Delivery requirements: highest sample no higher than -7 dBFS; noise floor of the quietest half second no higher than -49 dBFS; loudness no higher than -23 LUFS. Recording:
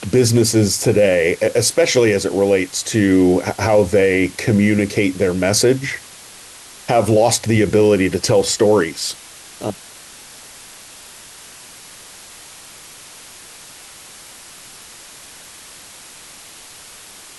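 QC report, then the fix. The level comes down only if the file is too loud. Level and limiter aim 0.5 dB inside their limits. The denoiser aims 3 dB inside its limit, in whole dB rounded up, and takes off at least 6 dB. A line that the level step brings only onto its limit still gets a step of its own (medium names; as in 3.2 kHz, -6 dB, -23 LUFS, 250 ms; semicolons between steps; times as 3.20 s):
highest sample -4.0 dBFS: fail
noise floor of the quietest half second -40 dBFS: fail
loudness -16.0 LUFS: fail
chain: noise reduction 6 dB, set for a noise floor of -40 dBFS; trim -7.5 dB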